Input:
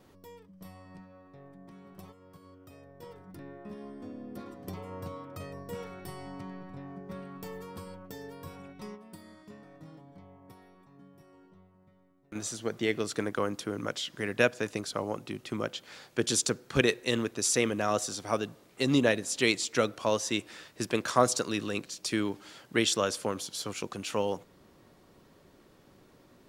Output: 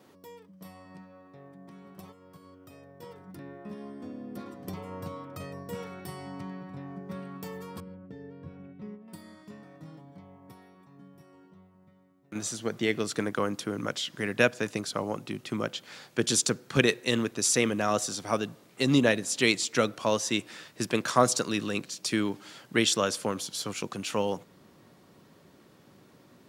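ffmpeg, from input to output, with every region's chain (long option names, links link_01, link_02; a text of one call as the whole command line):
ffmpeg -i in.wav -filter_complex "[0:a]asettb=1/sr,asplit=3[link_01][link_02][link_03];[link_01]atrim=end=7.804[link_04];[link_02]atrim=start=7.8:end=9.08,asetpts=PTS-STARTPTS,afade=type=in:duration=0.004:curve=qsin,afade=type=out:start_time=1.276:duration=0.004:curve=qsin,lowpass=1500,equalizer=frequency=980:width=1.1:gain=-12.5[link_05];[link_03]atrim=start=9.076[link_06];[link_04][link_05]acrossfade=duration=0.004:curve1=hsin:curve2=qsin[link_07];[link_07][link_06]acrossfade=duration=0.004:curve1=qsin:curve2=hsin,highpass=160,asubboost=boost=2:cutoff=210,volume=2.5dB" out.wav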